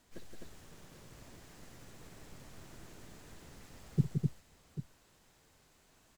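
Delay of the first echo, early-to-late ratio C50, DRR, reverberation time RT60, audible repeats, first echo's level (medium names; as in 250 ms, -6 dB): 55 ms, no reverb, no reverb, no reverb, 4, -13.0 dB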